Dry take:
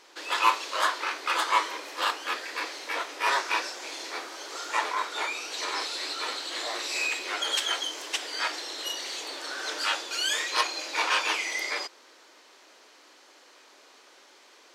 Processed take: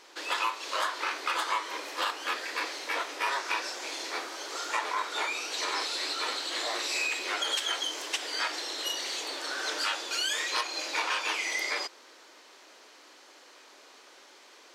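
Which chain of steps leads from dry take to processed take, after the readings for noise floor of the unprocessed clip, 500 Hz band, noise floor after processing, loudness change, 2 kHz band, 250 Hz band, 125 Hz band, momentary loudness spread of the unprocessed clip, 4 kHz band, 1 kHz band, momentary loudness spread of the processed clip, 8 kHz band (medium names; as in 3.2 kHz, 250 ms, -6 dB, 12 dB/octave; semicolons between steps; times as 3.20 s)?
-56 dBFS, -1.5 dB, -55 dBFS, -2.0 dB, -2.0 dB, -1.0 dB, no reading, 9 LU, -1.5 dB, -3.5 dB, 5 LU, -1.0 dB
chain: compression 12:1, threshold -27 dBFS, peak gain reduction 12 dB; trim +1 dB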